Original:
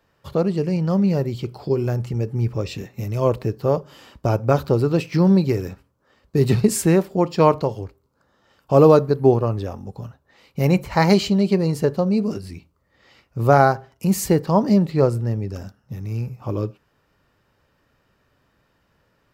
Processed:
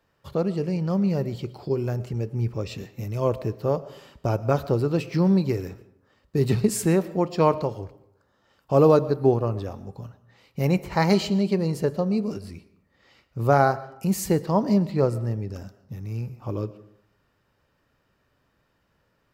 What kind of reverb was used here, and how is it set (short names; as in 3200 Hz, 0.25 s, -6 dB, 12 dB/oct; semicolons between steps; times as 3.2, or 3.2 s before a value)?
digital reverb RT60 0.72 s, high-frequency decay 0.65×, pre-delay 75 ms, DRR 17 dB; gain -4.5 dB